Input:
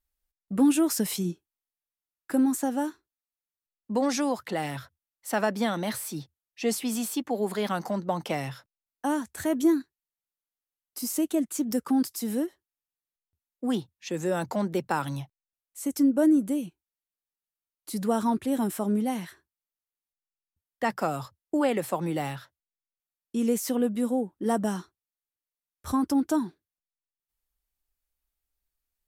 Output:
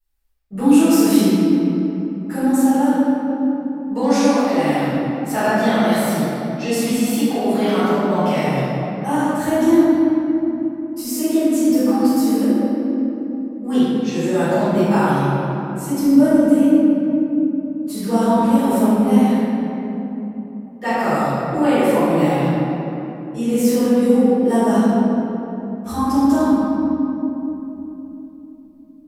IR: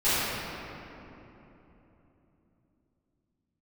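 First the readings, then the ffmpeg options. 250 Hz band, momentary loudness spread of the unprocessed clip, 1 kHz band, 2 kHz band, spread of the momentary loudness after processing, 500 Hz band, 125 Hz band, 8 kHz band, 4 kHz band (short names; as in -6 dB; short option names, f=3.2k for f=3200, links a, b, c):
+12.5 dB, 12 LU, +11.5 dB, +10.5 dB, 12 LU, +12.0 dB, +13.5 dB, +5.5 dB, +8.5 dB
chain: -filter_complex "[1:a]atrim=start_sample=2205[a];[0:a][a]afir=irnorm=-1:irlink=0,volume=-5.5dB"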